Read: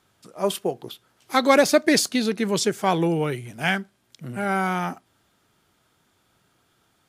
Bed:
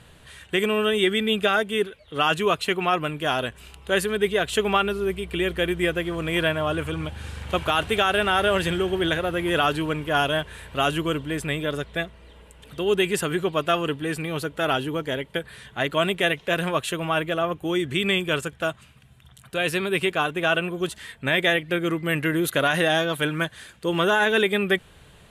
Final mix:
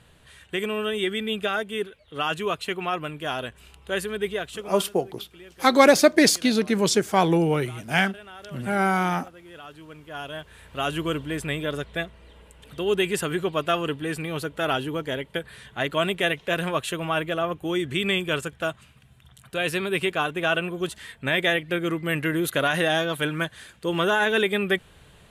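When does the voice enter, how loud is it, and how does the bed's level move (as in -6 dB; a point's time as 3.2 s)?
4.30 s, +1.5 dB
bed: 4.33 s -5 dB
4.91 s -22 dB
9.61 s -22 dB
11.05 s -1.5 dB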